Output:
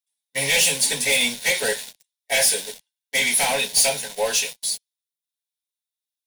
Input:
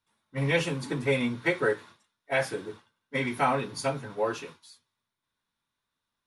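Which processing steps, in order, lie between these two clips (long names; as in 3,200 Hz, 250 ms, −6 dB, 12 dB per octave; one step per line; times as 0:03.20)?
first difference
leveller curve on the samples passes 5
in parallel at −7.5 dB: bit reduction 8 bits
on the sum: phaser with its sweep stopped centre 330 Hz, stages 6
level +9 dB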